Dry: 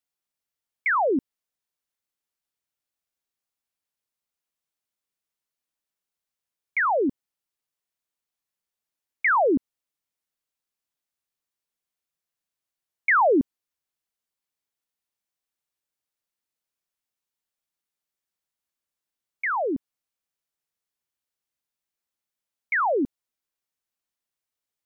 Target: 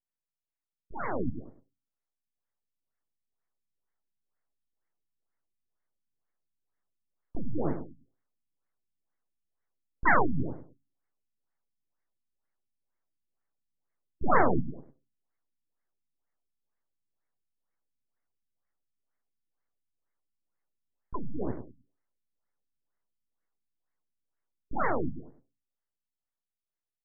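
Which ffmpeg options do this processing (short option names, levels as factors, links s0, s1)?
-filter_complex "[0:a]equalizer=f=1200:w=0.3:g=-9.5,bandreject=f=60:t=h:w=6,bandreject=f=120:t=h:w=6,bandreject=f=180:t=h:w=6,bandreject=f=240:t=h:w=6,bandreject=f=300:t=h:w=6,bandreject=f=360:t=h:w=6,bandreject=f=420:t=h:w=6,bandreject=f=480:t=h:w=6,acrossover=split=110|810[s0][s1][s2];[s2]dynaudnorm=f=450:g=11:m=3.98[s3];[s0][s1][s3]amix=inputs=3:normalize=0,asplit=4[s4][s5][s6][s7];[s5]asetrate=22050,aresample=44100,atempo=2,volume=0.794[s8];[s6]asetrate=29433,aresample=44100,atempo=1.49831,volume=0.141[s9];[s7]asetrate=58866,aresample=44100,atempo=0.749154,volume=0.794[s10];[s4][s8][s9][s10]amix=inputs=4:normalize=0,aeval=exprs='max(val(0),0)':c=same,asplit=2[s11][s12];[s12]aecho=0:1:93|186|279:0.355|0.0958|0.0259[s13];[s11][s13]amix=inputs=2:normalize=0,asetrate=40517,aresample=44100,afftfilt=real='re*lt(b*sr/1024,260*pow(2300/260,0.5+0.5*sin(2*PI*2.1*pts/sr)))':imag='im*lt(b*sr/1024,260*pow(2300/260,0.5+0.5*sin(2*PI*2.1*pts/sr)))':win_size=1024:overlap=0.75,volume=0.794"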